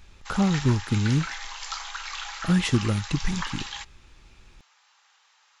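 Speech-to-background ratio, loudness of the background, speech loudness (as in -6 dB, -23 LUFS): 9.0 dB, -35.0 LUFS, -26.0 LUFS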